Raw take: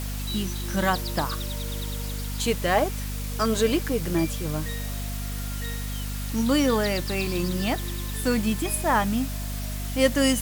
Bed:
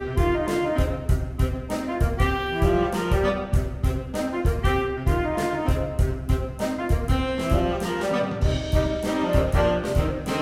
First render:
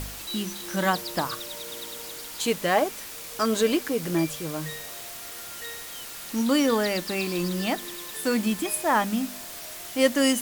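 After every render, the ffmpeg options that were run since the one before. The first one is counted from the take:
-af "bandreject=f=50:t=h:w=4,bandreject=f=100:t=h:w=4,bandreject=f=150:t=h:w=4,bandreject=f=200:t=h:w=4,bandreject=f=250:t=h:w=4"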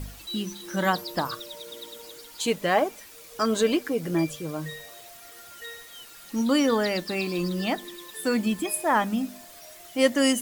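-af "afftdn=nr=10:nf=-39"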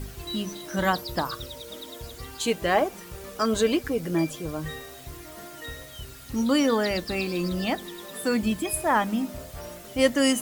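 -filter_complex "[1:a]volume=-20dB[a];[0:a][a]amix=inputs=2:normalize=0"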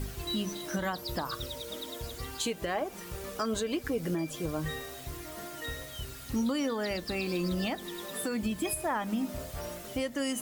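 -af "acompressor=threshold=-24dB:ratio=6,alimiter=limit=-22dB:level=0:latency=1:release=277"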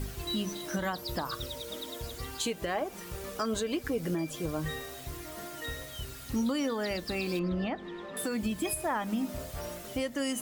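-filter_complex "[0:a]asettb=1/sr,asplit=3[a][b][c];[a]atrim=end=7.394[d];[b]atrim=start=7.39:end=8.17,asetpts=PTS-STARTPTS,afade=t=in:d=0.004:c=qsin,afade=t=out:st=0.776:d=0.004:c=qsin,lowpass=2.2k[e];[c]atrim=start=8.166[f];[d][e]acrossfade=d=0.004:c1=hsin:c2=qsin[g];[g][f]acrossfade=d=0.004:c1=qsin:c2=hsin"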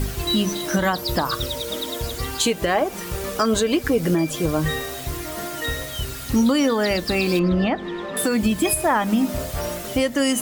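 -af "volume=12dB"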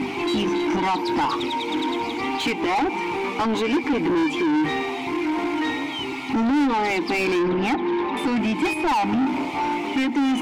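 -filter_complex "[0:a]asplit=3[a][b][c];[a]bandpass=f=300:t=q:w=8,volume=0dB[d];[b]bandpass=f=870:t=q:w=8,volume=-6dB[e];[c]bandpass=f=2.24k:t=q:w=8,volume=-9dB[f];[d][e][f]amix=inputs=3:normalize=0,asplit=2[g][h];[h]highpass=f=720:p=1,volume=34dB,asoftclip=type=tanh:threshold=-13.5dB[i];[g][i]amix=inputs=2:normalize=0,lowpass=f=2.8k:p=1,volume=-6dB"

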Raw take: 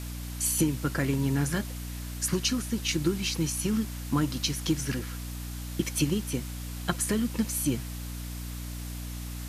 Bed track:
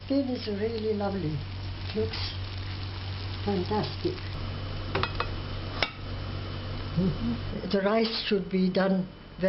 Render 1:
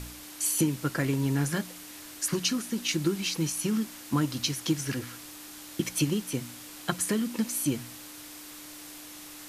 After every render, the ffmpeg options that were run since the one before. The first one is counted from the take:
-af "bandreject=f=60:t=h:w=4,bandreject=f=120:t=h:w=4,bandreject=f=180:t=h:w=4,bandreject=f=240:t=h:w=4"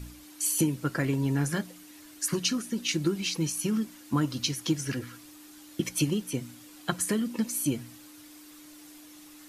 -af "afftdn=nr=9:nf=-45"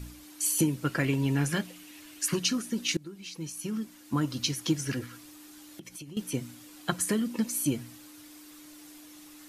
-filter_complex "[0:a]asettb=1/sr,asplit=3[a][b][c];[a]atrim=end=0.844[d];[b]atrim=start=0.84:end=2.39,asetpts=PTS-STARTPTS,afade=t=in:d=0.004:c=qsin,afade=t=out:st=1.546:d=0.004:c=qsin,equalizer=f=2.7k:t=o:w=0.69:g=7.5[e];[c]atrim=start=2.386[f];[d][e]acrossfade=d=0.004:c1=hsin:c2=qsin[g];[g][f]acrossfade=d=0.004:c1=qsin:c2=hsin,asettb=1/sr,asplit=3[h][i][j];[h]atrim=end=5.064[k];[i]atrim=start=5.06:end=6.17,asetpts=PTS-STARTPTS,afade=t=in:d=0.004:c=qsin,afade=t=out:st=1.106:d=0.004:c=qsin,acompressor=threshold=-41dB:ratio=8:attack=3.2:release=140:knee=1:detection=peak[l];[j]atrim=start=6.166[m];[k][l]acrossfade=d=0.004:c1=hsin:c2=qsin[n];[n][m]acrossfade=d=0.004:c1=qsin:c2=hsin,asplit=2[o][p];[o]atrim=end=2.97,asetpts=PTS-STARTPTS,afade=t=out:st=2.966:d=0.004:c=hsin:silence=0.0841395[q];[p]atrim=start=2.97,asetpts=PTS-STARTPTS,afade=t=in:d=1.53:silence=0.0841395[r];[q][r]concat=n=2:v=0:a=1"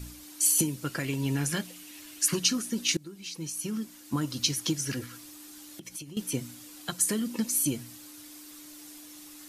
-filter_complex "[0:a]acrossover=split=3800[a][b];[a]alimiter=limit=-19dB:level=0:latency=1:release=420[c];[b]acontrast=26[d];[c][d]amix=inputs=2:normalize=0"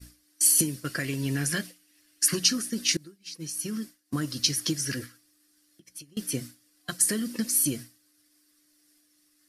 -af "agate=range=-33dB:threshold=-34dB:ratio=3:detection=peak,superequalizer=9b=0.398:11b=1.78:14b=1.78:16b=1.58"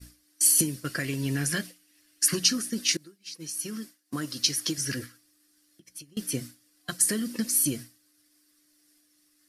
-filter_complex "[0:a]asettb=1/sr,asplit=3[a][b][c];[a]atrim=end=2.804[d];[b]atrim=start=2.8:end=4.78,asetpts=PTS-STARTPTS,afade=t=in:d=0.004:c=qsin,afade=t=out:st=1.976:d=0.004:c=qsin,highpass=f=260:p=1[e];[c]atrim=start=4.776[f];[d][e]acrossfade=d=0.004:c1=hsin:c2=qsin[g];[g][f]acrossfade=d=0.004:c1=qsin:c2=hsin"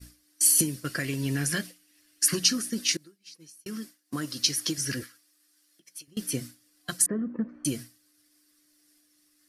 -filter_complex "[0:a]asettb=1/sr,asplit=3[a][b][c];[a]atrim=end=5.034[d];[b]atrim=start=5.03:end=6.08,asetpts=PTS-STARTPTS,afade=t=in:d=0.004:c=qsin,afade=t=out:st=1.046:d=0.004:c=qsin,highpass=f=630:p=1[e];[c]atrim=start=6.076[f];[d][e]acrossfade=d=0.004:c1=hsin:c2=qsin[g];[g][f]acrossfade=d=0.004:c1=qsin:c2=hsin,asettb=1/sr,asplit=3[h][i][j];[h]atrim=end=7.064[k];[i]atrim=start=7.06:end=7.65,asetpts=PTS-STARTPTS,afade=t=in:d=0.004:c=qsin,afade=t=out:st=0.586:d=0.004:c=qsin,lowpass=f=1.3k:w=0.5412,lowpass=f=1.3k:w=1.3066[l];[j]atrim=start=7.646[m];[k][l]acrossfade=d=0.004:c1=hsin:c2=qsin[n];[n][m]acrossfade=d=0.004:c1=qsin:c2=hsin,asplit=2[o][p];[o]atrim=end=3.66,asetpts=PTS-STARTPTS,afade=t=out:st=2.82:d=0.84[q];[p]atrim=start=3.66,asetpts=PTS-STARTPTS,afade=t=in:d=0.004:c=hsin[r];[q][r]concat=n=2:v=0:a=1"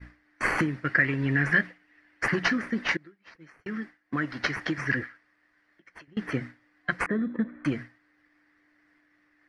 -filter_complex "[0:a]asplit=2[a][b];[b]acrusher=samples=12:mix=1:aa=0.000001,volume=-11dB[c];[a][c]amix=inputs=2:normalize=0,lowpass=f=1.9k:t=q:w=4.3"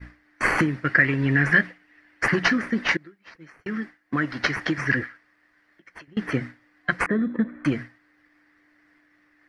-af "volume=4.5dB"

